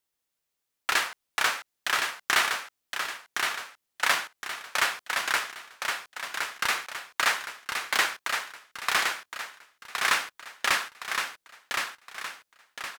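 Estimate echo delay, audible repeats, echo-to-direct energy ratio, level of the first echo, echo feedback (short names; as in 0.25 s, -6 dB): 1.066 s, 4, -4.0 dB, -5.0 dB, 42%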